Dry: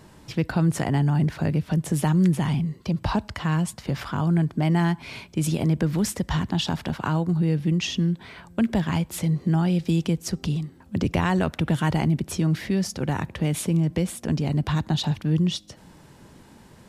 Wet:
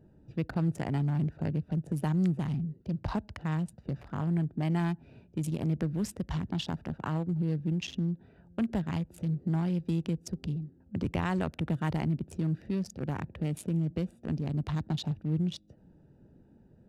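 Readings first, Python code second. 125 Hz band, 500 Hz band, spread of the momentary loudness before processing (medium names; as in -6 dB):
-7.5 dB, -8.5 dB, 6 LU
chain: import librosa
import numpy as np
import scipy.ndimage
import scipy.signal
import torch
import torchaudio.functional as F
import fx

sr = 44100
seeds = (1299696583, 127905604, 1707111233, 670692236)

y = fx.wiener(x, sr, points=41)
y = F.gain(torch.from_numpy(y), -7.5).numpy()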